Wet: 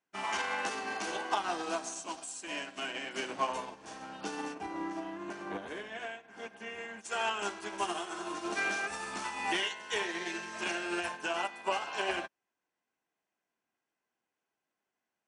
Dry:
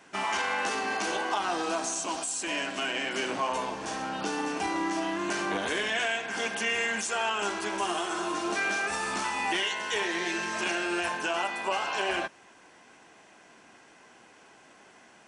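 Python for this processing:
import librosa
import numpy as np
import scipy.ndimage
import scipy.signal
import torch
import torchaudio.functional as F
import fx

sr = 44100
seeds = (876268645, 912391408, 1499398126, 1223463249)

y = fx.high_shelf(x, sr, hz=2200.0, db=-11.5, at=(4.53, 7.04), fade=0.02)
y = fx.upward_expand(y, sr, threshold_db=-48.0, expansion=2.5)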